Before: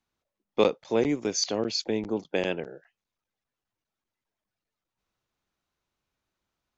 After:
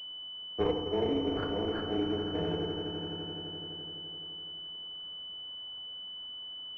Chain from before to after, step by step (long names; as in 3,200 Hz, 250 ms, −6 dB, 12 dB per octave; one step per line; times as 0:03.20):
high-pass filter 120 Hz 12 dB per octave
tube saturation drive 18 dB, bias 0.7
in parallel at −7.5 dB: bit-depth reduction 8 bits, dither triangular
on the sum: notch comb filter 280 Hz
frequency shifter −18 Hz
on a send: echo that builds up and dies away 85 ms, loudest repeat 5, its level −12.5 dB
on the sum: feedback delay network reverb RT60 1.3 s, low-frequency decay 1.3×, high-frequency decay 0.45×, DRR 0 dB
switching amplifier with a slow clock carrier 3,000 Hz
level −7.5 dB